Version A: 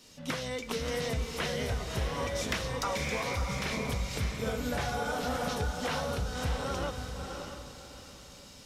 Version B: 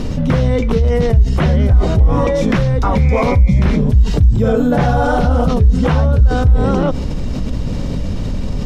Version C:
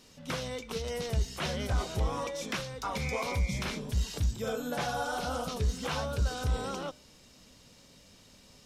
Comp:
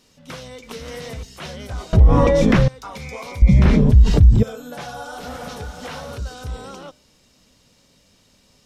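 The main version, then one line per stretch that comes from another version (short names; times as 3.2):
C
0.63–1.23 from A
1.93–2.68 from B
3.42–4.43 from B
5.2–6.18 from A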